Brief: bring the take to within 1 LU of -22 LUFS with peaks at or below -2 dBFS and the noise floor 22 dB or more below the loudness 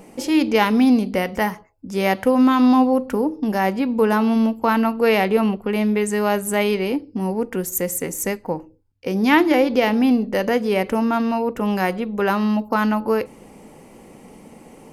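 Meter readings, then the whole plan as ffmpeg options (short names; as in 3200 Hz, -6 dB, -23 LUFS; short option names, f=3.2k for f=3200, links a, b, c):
loudness -19.5 LUFS; peak -3.5 dBFS; loudness target -22.0 LUFS
-> -af "volume=-2.5dB"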